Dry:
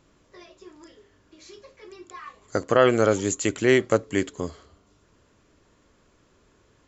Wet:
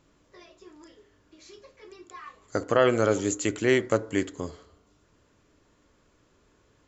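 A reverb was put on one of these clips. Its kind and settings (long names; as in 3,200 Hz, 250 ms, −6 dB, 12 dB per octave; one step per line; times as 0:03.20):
feedback delay network reverb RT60 0.68 s, low-frequency decay 0.85×, high-frequency decay 0.3×, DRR 14.5 dB
level −3 dB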